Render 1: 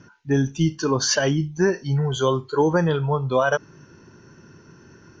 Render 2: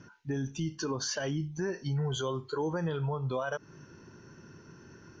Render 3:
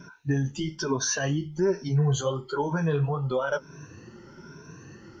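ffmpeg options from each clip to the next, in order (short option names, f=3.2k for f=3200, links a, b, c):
-af "alimiter=limit=-20.5dB:level=0:latency=1:release=177,volume=-4dB"
-af "afftfilt=real='re*pow(10,14/40*sin(2*PI*(1.6*log(max(b,1)*sr/1024/100)/log(2)-(1.1)*(pts-256)/sr)))':imag='im*pow(10,14/40*sin(2*PI*(1.6*log(max(b,1)*sr/1024/100)/log(2)-(1.1)*(pts-256)/sr)))':win_size=1024:overlap=0.75,flanger=delay=5:depth=9.4:regen=-34:speed=1.2:shape=sinusoidal,volume=7.5dB"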